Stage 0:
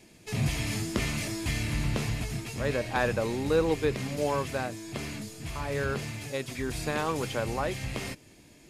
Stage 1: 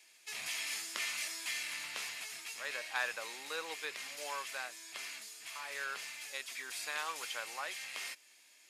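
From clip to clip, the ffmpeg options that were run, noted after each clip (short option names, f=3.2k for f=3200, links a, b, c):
-af "highpass=1.4k,volume=-2dB"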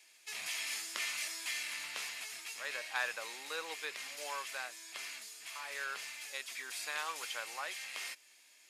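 -af "lowshelf=f=190:g=-6"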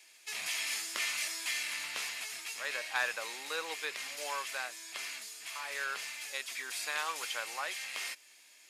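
-af "asoftclip=type=hard:threshold=-24.5dB,volume=3.5dB"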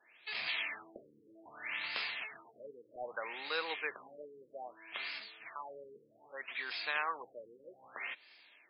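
-af "afftfilt=real='re*lt(b*sr/1024,500*pow(5200/500,0.5+0.5*sin(2*PI*0.63*pts/sr)))':imag='im*lt(b*sr/1024,500*pow(5200/500,0.5+0.5*sin(2*PI*0.63*pts/sr)))':win_size=1024:overlap=0.75,volume=1dB"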